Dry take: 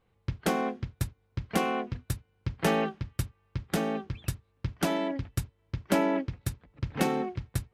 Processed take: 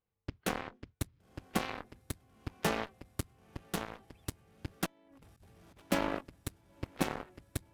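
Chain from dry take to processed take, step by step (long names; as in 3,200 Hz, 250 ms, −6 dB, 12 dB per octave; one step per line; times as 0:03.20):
feedback delay with all-pass diffusion 1,001 ms, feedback 44%, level −12.5 dB
0:04.86–0:05.82: compressor whose output falls as the input rises −37 dBFS, ratio −0.5
harmonic generator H 3 −42 dB, 5 −38 dB, 7 −15 dB, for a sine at −11.5 dBFS
level −4.5 dB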